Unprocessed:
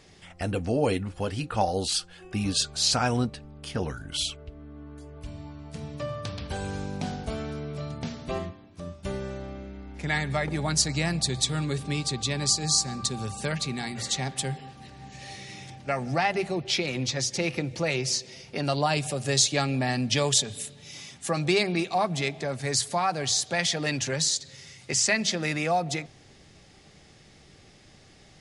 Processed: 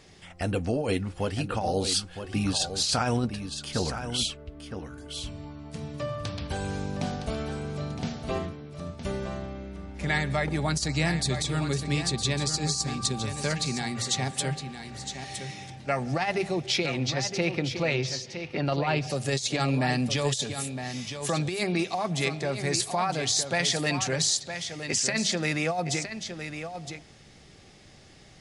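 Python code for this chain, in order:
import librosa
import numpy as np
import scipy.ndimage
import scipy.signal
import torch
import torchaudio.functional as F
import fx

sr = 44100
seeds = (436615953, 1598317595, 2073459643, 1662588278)

y = fx.lowpass(x, sr, hz=fx.line((16.86, 6000.0), (19.09, 2700.0)), slope=12, at=(16.86, 19.09), fade=0.02)
y = fx.over_compress(y, sr, threshold_db=-25.0, ratio=-0.5)
y = y + 10.0 ** (-9.0 / 20.0) * np.pad(y, (int(963 * sr / 1000.0), 0))[:len(y)]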